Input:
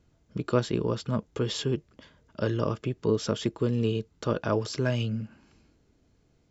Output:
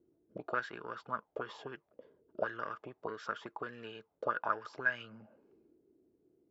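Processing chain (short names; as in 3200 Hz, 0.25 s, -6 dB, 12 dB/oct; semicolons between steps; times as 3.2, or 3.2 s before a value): added harmonics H 6 -31 dB, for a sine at -10 dBFS; auto-wah 350–1600 Hz, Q 5.9, up, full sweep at -22 dBFS; gain +7 dB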